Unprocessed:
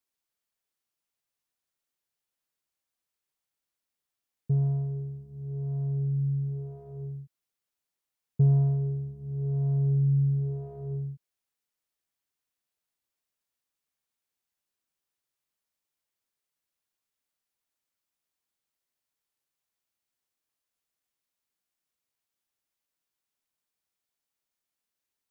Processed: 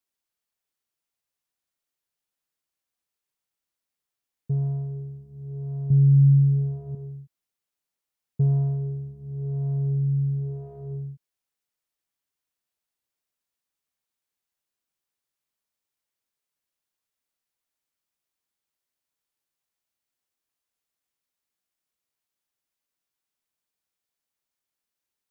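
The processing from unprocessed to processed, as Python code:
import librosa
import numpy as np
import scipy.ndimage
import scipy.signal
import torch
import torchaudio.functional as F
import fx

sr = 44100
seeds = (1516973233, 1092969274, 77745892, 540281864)

y = fx.peak_eq(x, sr, hz=120.0, db=13.0, octaves=1.8, at=(5.9, 6.95))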